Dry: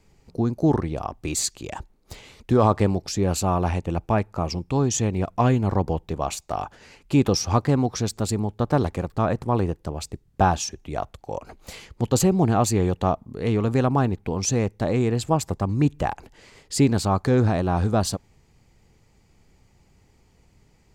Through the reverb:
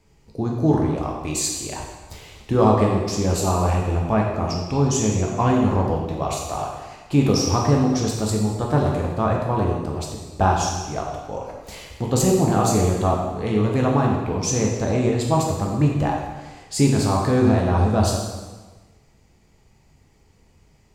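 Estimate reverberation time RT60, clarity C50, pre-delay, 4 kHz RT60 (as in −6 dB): 1.3 s, 2.0 dB, 5 ms, 1.2 s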